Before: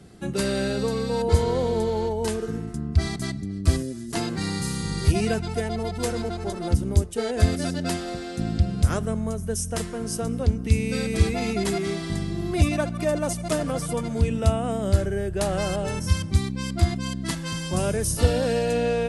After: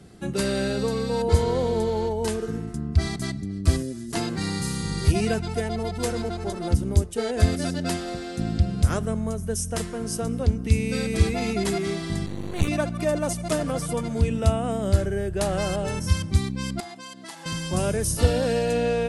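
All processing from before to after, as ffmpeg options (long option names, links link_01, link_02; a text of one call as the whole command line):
ffmpeg -i in.wav -filter_complex "[0:a]asettb=1/sr,asplit=3[link_01][link_02][link_03];[link_01]atrim=end=12.264[link_04];[link_02]atrim=start=12.26:end=12.68,asetpts=PTS-STARTPTS,afade=type=in:duration=0.004:curve=qsin,afade=type=out:start_time=0.416:duration=0.004:curve=qsin,equalizer=frequency=520:width_type=o:width=0.84:gain=-6,aeval=exprs='max(val(0),0)':channel_layout=same,asuperstop=centerf=5100:order=12:qfactor=5.9[link_05];[link_03]atrim=start=12.676[link_06];[link_04][link_05]acrossfade=duration=0.004:curve1=hsin:curve2=qsin[link_07];[link_07][link_06]acrossfade=duration=0.004:curve1=qsin:curve2=hsin,asettb=1/sr,asplit=3[link_08][link_09][link_10];[link_08]atrim=end=16.804[link_11];[link_09]atrim=start=16.8:end=17.46,asetpts=PTS-STARTPTS,afade=type=in:duration=0.004:curve=qsin,afade=type=out:start_time=0.656:duration=0.004:curve=qsin,highpass=440,equalizer=frequency=830:width=5.9:gain=14,acompressor=threshold=-38dB:ratio=3:attack=3.2:release=140:knee=1:detection=peak[link_12];[link_10]atrim=start=17.456[link_13];[link_11][link_12]acrossfade=duration=0.004:curve1=hsin:curve2=qsin[link_14];[link_14][link_13]acrossfade=duration=0.004:curve1=qsin:curve2=hsin" out.wav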